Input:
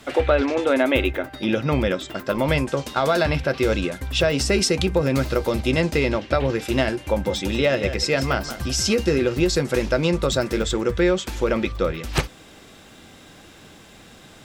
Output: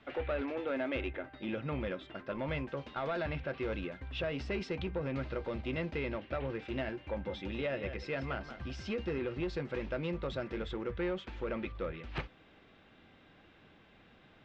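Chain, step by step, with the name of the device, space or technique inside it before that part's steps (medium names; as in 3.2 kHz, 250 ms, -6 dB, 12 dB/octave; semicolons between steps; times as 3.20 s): overdriven synthesiser ladder filter (saturation -14 dBFS, distortion -17 dB; four-pole ladder low-pass 3.7 kHz, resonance 20%); trim -9 dB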